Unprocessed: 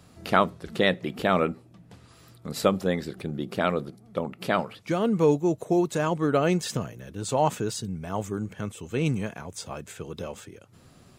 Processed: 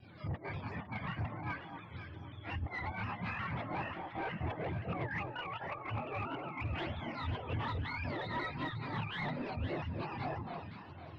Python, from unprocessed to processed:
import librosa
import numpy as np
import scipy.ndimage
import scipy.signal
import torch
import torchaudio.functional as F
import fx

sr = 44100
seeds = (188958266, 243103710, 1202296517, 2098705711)

y = fx.octave_mirror(x, sr, pivot_hz=630.0)
y = fx.high_shelf(y, sr, hz=4600.0, db=4.5)
y = fx.over_compress(y, sr, threshold_db=-32.0, ratio=-0.5)
y = fx.chorus_voices(y, sr, voices=2, hz=1.5, base_ms=27, depth_ms=3.0, mix_pct=65)
y = fx.spec_gate(y, sr, threshold_db=-25, keep='strong')
y = 10.0 ** (-34.0 / 20.0) * np.tanh(y / 10.0 ** (-34.0 / 20.0))
y = fx.air_absorb(y, sr, metres=370.0)
y = fx.echo_alternate(y, sr, ms=254, hz=1200.0, feedback_pct=60, wet_db=-4.5)
y = fx.vibrato_shape(y, sr, shape='saw_down', rate_hz=5.6, depth_cents=100.0)
y = F.gain(torch.from_numpy(y), 1.5).numpy()